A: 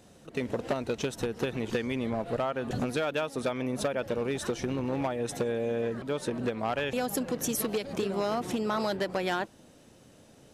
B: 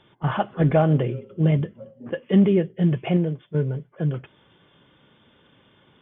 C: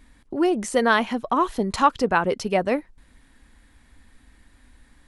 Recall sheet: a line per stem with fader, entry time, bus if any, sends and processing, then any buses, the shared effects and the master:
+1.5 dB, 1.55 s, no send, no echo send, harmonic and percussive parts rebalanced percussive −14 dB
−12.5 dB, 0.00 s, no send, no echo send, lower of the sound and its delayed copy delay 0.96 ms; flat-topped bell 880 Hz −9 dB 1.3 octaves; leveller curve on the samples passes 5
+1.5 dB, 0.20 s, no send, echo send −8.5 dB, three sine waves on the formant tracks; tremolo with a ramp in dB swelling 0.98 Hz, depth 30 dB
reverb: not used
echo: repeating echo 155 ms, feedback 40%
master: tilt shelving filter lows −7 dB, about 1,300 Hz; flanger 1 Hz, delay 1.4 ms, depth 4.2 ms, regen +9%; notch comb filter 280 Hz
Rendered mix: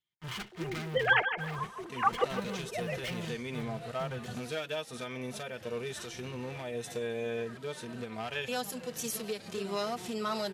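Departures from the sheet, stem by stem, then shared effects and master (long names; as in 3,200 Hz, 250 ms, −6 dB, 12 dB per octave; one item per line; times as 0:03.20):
stem B −12.5 dB → −21.5 dB
master: missing flanger 1 Hz, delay 1.4 ms, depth 4.2 ms, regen +9%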